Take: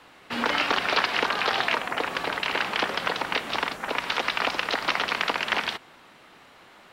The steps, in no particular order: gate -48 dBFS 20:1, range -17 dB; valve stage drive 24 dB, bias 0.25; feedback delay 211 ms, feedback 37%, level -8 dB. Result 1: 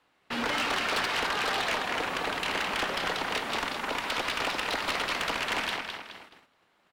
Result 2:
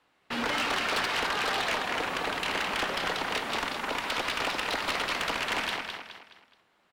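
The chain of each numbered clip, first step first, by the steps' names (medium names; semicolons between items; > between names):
feedback delay > gate > valve stage; gate > feedback delay > valve stage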